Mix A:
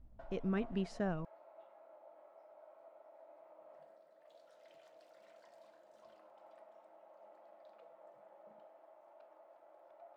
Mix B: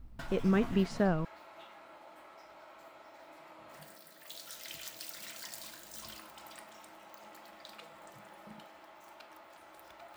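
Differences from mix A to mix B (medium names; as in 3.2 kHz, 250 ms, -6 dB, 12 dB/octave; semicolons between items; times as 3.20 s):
speech +8.0 dB; background: remove band-pass filter 600 Hz, Q 3.6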